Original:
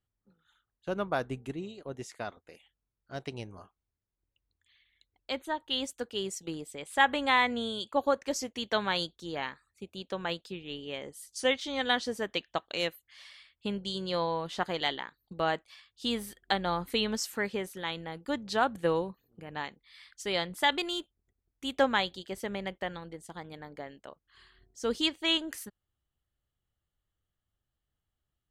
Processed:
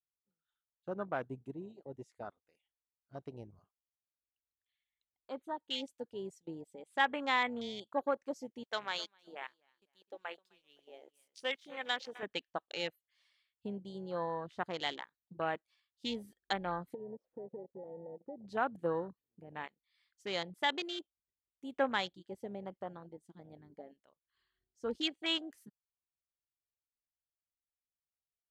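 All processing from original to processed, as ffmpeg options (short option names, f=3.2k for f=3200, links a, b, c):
-filter_complex "[0:a]asettb=1/sr,asplit=3[a][b][c];[a]atrim=end=8.634[d];[b]atrim=start=8.63:end=12.23,asetpts=PTS-STARTPTS,afade=t=in:d=0.004:c=qsin,afade=t=out:st=3.596:d=0.004:c=qsin,highpass=f=710:p=1,aeval=exprs='sgn(val(0))*max(abs(val(0))-0.00141,0)':c=same,aecho=1:1:257|514|771:0.178|0.0551|0.0171,atrim=end_sample=158760[e];[c]atrim=start=12.226[f];[d][e]acrossfade=d=0.004:c1=hsin:c2=qsin[g];[g][f]acrossfade=d=0.004:c1=qsin:c2=hsin,asettb=1/sr,asplit=3[h][i][j];[h]atrim=end=16.944[k];[i]atrim=start=16.94:end=18.46,asetpts=PTS-STARTPTS,afade=t=in:d=0.004:c=qsin,afade=t=out:st=1.516:d=0.004:c=qsin,lowpass=f=520:t=q:w=4.6,acompressor=threshold=-38dB:ratio=4:attack=3.2:release=140:knee=1:detection=peak[l];[j]atrim=start=18.456[m];[k][l]acrossfade=d=0.004:c1=hsin:c2=qsin[n];[n][m]acrossfade=d=0.004:c1=qsin:c2=hsin,lowshelf=f=93:g=-5.5,afwtdn=0.0141,volume=-6dB"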